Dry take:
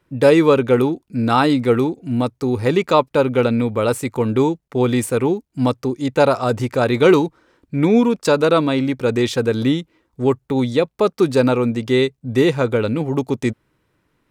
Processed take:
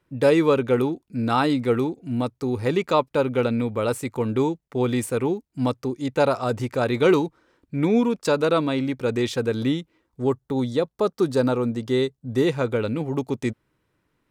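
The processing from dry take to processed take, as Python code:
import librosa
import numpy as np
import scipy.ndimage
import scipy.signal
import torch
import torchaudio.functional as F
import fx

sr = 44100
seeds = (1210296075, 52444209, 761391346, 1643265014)

y = fx.peak_eq(x, sr, hz=2400.0, db=-8.0, octaves=0.52, at=(10.22, 12.47))
y = y * 10.0 ** (-5.5 / 20.0)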